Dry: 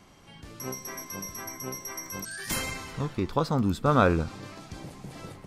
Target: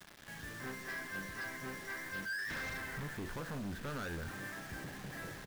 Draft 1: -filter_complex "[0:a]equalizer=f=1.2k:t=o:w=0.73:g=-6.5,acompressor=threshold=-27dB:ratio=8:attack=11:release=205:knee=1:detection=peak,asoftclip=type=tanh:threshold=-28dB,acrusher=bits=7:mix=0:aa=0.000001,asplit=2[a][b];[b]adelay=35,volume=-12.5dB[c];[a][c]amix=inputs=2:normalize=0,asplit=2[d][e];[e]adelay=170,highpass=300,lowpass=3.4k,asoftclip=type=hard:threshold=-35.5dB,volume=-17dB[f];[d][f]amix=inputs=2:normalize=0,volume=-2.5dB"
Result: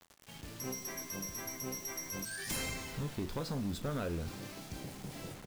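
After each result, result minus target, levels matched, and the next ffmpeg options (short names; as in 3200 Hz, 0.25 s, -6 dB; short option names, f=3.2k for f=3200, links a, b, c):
2000 Hz band -9.0 dB; soft clip: distortion -6 dB
-filter_complex "[0:a]lowpass=f=1.7k:t=q:w=9.4,equalizer=f=1.2k:t=o:w=0.73:g=-6.5,acompressor=threshold=-27dB:ratio=8:attack=11:release=205:knee=1:detection=peak,asoftclip=type=tanh:threshold=-28dB,acrusher=bits=7:mix=0:aa=0.000001,asplit=2[a][b];[b]adelay=35,volume=-12.5dB[c];[a][c]amix=inputs=2:normalize=0,asplit=2[d][e];[e]adelay=170,highpass=300,lowpass=3.4k,asoftclip=type=hard:threshold=-35.5dB,volume=-17dB[f];[d][f]amix=inputs=2:normalize=0,volume=-2.5dB"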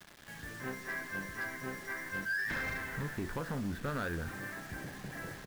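soft clip: distortion -7 dB
-filter_complex "[0:a]lowpass=f=1.7k:t=q:w=9.4,equalizer=f=1.2k:t=o:w=0.73:g=-6.5,acompressor=threshold=-27dB:ratio=8:attack=11:release=205:knee=1:detection=peak,asoftclip=type=tanh:threshold=-37dB,acrusher=bits=7:mix=0:aa=0.000001,asplit=2[a][b];[b]adelay=35,volume=-12.5dB[c];[a][c]amix=inputs=2:normalize=0,asplit=2[d][e];[e]adelay=170,highpass=300,lowpass=3.4k,asoftclip=type=hard:threshold=-35.5dB,volume=-17dB[f];[d][f]amix=inputs=2:normalize=0,volume=-2.5dB"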